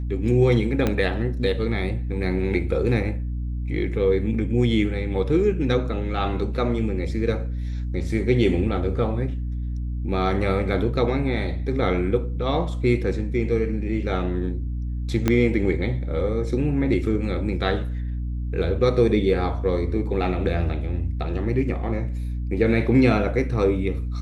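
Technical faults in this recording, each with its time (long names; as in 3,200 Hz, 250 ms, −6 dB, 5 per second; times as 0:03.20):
mains hum 60 Hz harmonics 5 −27 dBFS
0:00.87: click −9 dBFS
0:15.28: click −7 dBFS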